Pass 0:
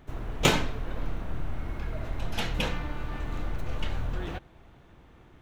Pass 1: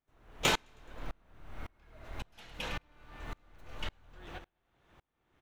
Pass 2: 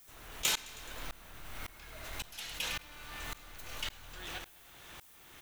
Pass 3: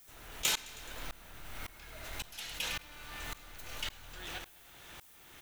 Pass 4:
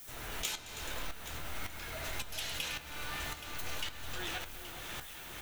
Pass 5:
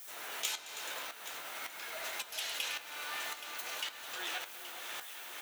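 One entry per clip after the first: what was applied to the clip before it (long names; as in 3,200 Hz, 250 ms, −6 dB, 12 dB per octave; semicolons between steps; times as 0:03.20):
low-shelf EQ 410 Hz −9.5 dB; repeating echo 106 ms, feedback 48%, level −14 dB; tremolo with a ramp in dB swelling 1.8 Hz, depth 33 dB; level +1 dB
first-order pre-emphasis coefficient 0.9; envelope flattener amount 50%; level +4 dB
notch filter 1,100 Hz, Q 19
downward compressor 6 to 1, threshold −44 dBFS, peak gain reduction 16.5 dB; flanger 0.49 Hz, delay 7.2 ms, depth 8.5 ms, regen +58%; on a send: delay that swaps between a low-pass and a high-pass 412 ms, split 1,300 Hz, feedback 68%, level −9 dB; on the sum: level +12.5 dB
high-pass filter 520 Hz 12 dB per octave; level +1 dB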